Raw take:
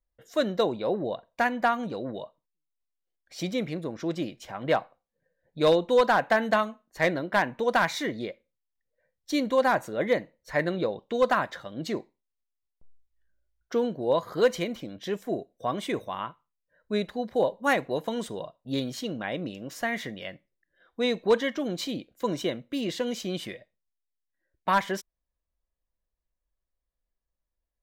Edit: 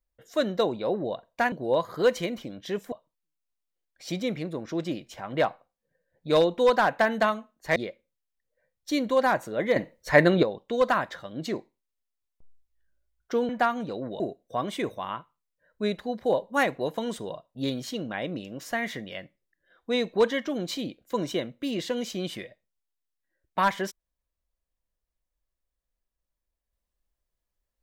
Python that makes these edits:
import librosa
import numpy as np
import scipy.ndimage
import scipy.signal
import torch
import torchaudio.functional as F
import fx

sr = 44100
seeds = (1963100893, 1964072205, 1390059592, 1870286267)

y = fx.edit(x, sr, fx.swap(start_s=1.52, length_s=0.71, other_s=13.9, other_length_s=1.4),
    fx.cut(start_s=7.07, length_s=1.1),
    fx.clip_gain(start_s=10.17, length_s=0.67, db=8.5), tone=tone)